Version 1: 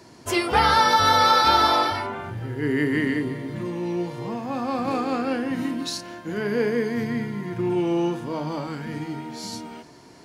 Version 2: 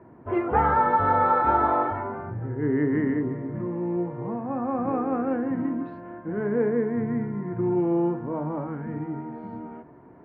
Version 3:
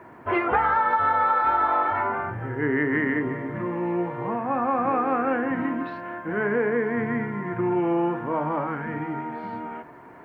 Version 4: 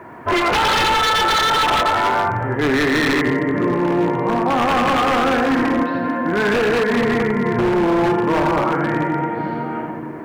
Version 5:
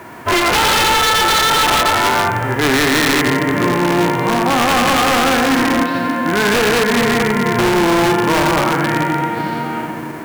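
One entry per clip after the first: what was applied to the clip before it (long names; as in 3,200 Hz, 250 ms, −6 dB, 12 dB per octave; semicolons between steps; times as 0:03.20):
Bessel low-pass filter 1,100 Hz, order 6
tilt shelving filter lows −10 dB, about 830 Hz; downward compressor 6 to 1, threshold −27 dBFS, peak gain reduction 11.5 dB; level +8 dB
echo with a time of its own for lows and highs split 540 Hz, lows 440 ms, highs 87 ms, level −4.5 dB; wave folding −19.5 dBFS; level +8 dB
spectral envelope flattened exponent 0.6; level +3 dB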